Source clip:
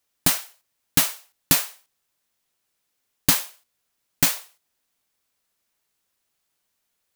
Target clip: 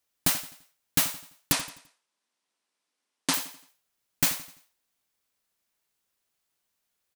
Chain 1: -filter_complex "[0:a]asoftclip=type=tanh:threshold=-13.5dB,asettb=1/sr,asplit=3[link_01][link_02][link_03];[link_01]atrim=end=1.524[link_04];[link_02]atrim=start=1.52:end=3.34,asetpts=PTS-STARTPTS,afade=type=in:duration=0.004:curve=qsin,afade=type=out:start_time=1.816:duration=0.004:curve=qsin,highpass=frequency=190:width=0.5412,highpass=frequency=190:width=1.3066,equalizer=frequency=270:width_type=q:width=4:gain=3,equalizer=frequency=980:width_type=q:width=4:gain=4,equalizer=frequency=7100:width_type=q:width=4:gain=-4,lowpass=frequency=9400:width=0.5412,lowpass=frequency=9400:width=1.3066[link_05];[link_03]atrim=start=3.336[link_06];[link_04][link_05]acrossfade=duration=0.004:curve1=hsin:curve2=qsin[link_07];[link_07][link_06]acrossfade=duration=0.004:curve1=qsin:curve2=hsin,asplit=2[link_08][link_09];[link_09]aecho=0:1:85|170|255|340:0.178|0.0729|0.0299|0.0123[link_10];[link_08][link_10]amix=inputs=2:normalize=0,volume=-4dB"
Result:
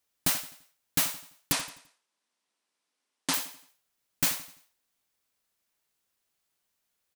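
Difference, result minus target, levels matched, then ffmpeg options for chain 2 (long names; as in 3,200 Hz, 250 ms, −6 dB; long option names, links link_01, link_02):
soft clipping: distortion +9 dB
-filter_complex "[0:a]asoftclip=type=tanh:threshold=-6dB,asettb=1/sr,asplit=3[link_01][link_02][link_03];[link_01]atrim=end=1.524[link_04];[link_02]atrim=start=1.52:end=3.34,asetpts=PTS-STARTPTS,afade=type=in:duration=0.004:curve=qsin,afade=type=out:start_time=1.816:duration=0.004:curve=qsin,highpass=frequency=190:width=0.5412,highpass=frequency=190:width=1.3066,equalizer=frequency=270:width_type=q:width=4:gain=3,equalizer=frequency=980:width_type=q:width=4:gain=4,equalizer=frequency=7100:width_type=q:width=4:gain=-4,lowpass=frequency=9400:width=0.5412,lowpass=frequency=9400:width=1.3066[link_05];[link_03]atrim=start=3.336[link_06];[link_04][link_05]acrossfade=duration=0.004:curve1=hsin:curve2=qsin[link_07];[link_07][link_06]acrossfade=duration=0.004:curve1=qsin:curve2=hsin,asplit=2[link_08][link_09];[link_09]aecho=0:1:85|170|255|340:0.178|0.0729|0.0299|0.0123[link_10];[link_08][link_10]amix=inputs=2:normalize=0,volume=-4dB"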